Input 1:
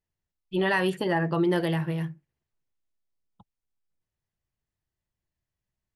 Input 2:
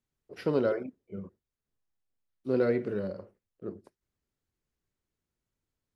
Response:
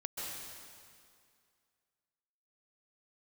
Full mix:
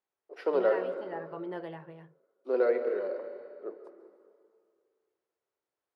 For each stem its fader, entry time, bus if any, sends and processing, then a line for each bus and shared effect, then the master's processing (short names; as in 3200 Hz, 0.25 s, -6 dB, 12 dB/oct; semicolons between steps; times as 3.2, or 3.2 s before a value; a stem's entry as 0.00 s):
-5.0 dB, 0.00 s, no send, auto duck -7 dB, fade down 0.85 s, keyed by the second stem
+1.5 dB, 0.00 s, send -6.5 dB, HPF 340 Hz 24 dB/oct; high shelf 4900 Hz +8 dB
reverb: on, RT60 2.2 s, pre-delay 0.122 s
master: band-pass 750 Hz, Q 0.84